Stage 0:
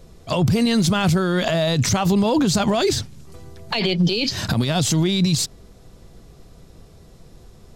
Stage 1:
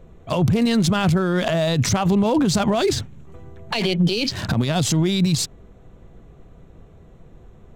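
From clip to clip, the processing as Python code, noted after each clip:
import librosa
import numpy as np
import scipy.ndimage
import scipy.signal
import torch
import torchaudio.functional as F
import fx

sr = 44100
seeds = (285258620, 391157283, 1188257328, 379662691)

y = fx.wiener(x, sr, points=9)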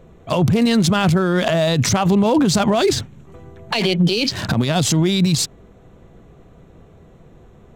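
y = fx.low_shelf(x, sr, hz=66.0, db=-9.5)
y = y * 10.0 ** (3.5 / 20.0)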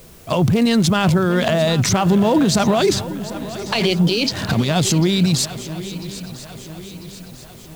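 y = fx.quant_dither(x, sr, seeds[0], bits=8, dither='triangular')
y = fx.echo_swing(y, sr, ms=996, ratio=3, feedback_pct=49, wet_db=-15.0)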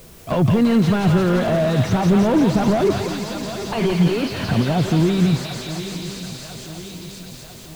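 y = fx.echo_thinned(x, sr, ms=172, feedback_pct=69, hz=870.0, wet_db=-5.0)
y = fx.slew_limit(y, sr, full_power_hz=99.0)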